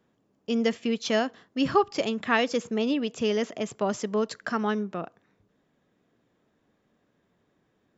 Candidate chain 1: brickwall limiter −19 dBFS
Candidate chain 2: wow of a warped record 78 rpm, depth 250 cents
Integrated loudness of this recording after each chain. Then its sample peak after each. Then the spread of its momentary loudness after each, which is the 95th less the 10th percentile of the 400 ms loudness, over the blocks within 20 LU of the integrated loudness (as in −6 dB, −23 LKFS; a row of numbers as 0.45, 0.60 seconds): −30.0, −27.5 LKFS; −19.0, −8.0 dBFS; 5, 8 LU